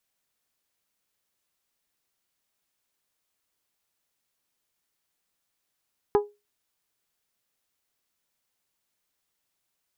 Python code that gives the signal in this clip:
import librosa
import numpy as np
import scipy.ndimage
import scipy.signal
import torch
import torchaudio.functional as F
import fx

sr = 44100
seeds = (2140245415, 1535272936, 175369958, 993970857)

y = fx.strike_glass(sr, length_s=0.89, level_db=-14, body='bell', hz=413.0, decay_s=0.24, tilt_db=6, modes=5)